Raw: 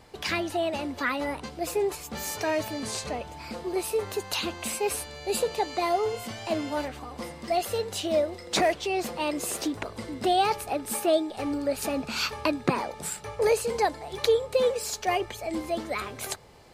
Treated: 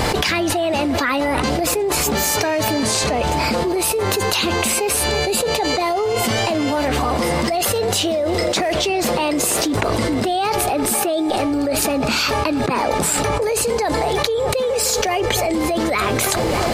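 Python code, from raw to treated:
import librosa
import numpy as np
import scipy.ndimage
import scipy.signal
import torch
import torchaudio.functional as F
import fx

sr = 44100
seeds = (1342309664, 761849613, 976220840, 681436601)

y = fx.echo_filtered(x, sr, ms=307, feedback_pct=73, hz=2400.0, wet_db=-21)
y = fx.env_flatten(y, sr, amount_pct=100)
y = F.gain(torch.from_numpy(y), -1.0).numpy()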